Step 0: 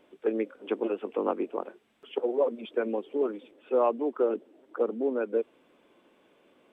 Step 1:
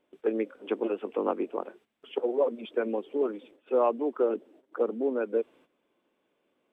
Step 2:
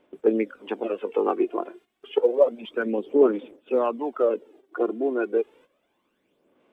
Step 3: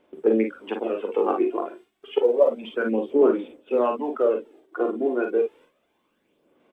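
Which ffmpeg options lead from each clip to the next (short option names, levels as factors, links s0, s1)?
-af "agate=range=0.251:threshold=0.00178:ratio=16:detection=peak"
-af "aphaser=in_gain=1:out_gain=1:delay=2.9:decay=0.59:speed=0.3:type=sinusoidal,volume=1.41"
-af "aecho=1:1:41|54:0.473|0.422"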